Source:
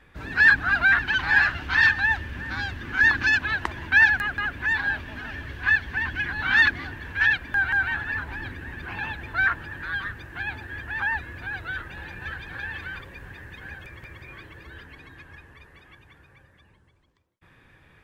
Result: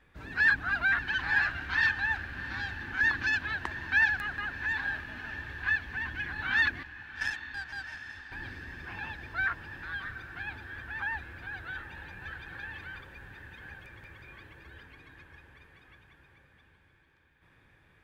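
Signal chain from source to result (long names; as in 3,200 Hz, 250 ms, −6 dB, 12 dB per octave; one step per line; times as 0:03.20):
0:06.83–0:08.32: power curve on the samples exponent 2
feedback delay with all-pass diffusion 751 ms, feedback 63%, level −13.5 dB
level −8 dB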